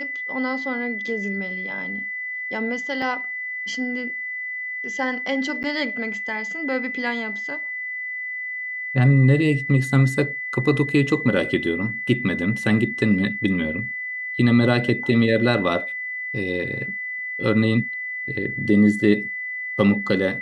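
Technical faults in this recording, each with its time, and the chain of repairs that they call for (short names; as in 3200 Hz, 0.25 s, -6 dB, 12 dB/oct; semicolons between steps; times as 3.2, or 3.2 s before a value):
tone 2000 Hz -27 dBFS
3.02 gap 2.6 ms
5.63–5.64 gap 9.4 ms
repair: notch 2000 Hz, Q 30; interpolate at 3.02, 2.6 ms; interpolate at 5.63, 9.4 ms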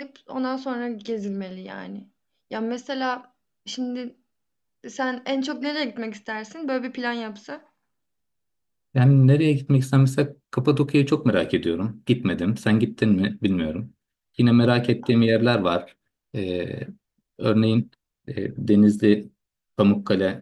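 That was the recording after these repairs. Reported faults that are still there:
none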